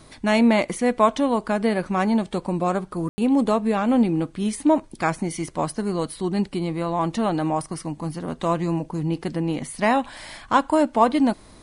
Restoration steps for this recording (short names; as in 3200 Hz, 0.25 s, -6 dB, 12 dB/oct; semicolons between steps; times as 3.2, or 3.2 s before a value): room tone fill 3.09–3.18